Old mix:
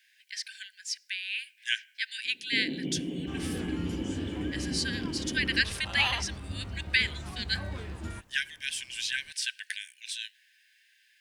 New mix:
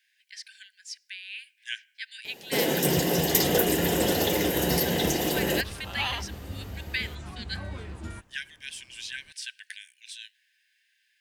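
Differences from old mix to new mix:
speech −5.5 dB
first sound: remove formant resonators in series i

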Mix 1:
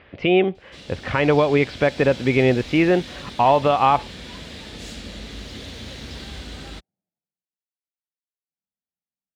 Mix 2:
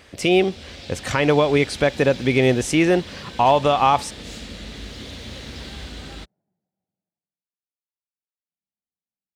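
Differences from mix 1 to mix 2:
speech: remove inverse Chebyshev low-pass filter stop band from 9,100 Hz, stop band 60 dB
first sound: entry −0.55 s

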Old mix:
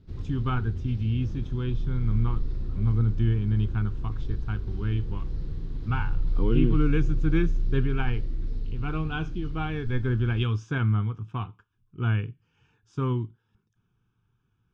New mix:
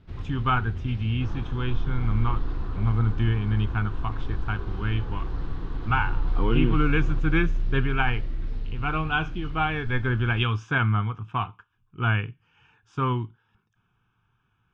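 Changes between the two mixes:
second sound +10.5 dB
master: add flat-topped bell 1,400 Hz +9.5 dB 2.7 octaves

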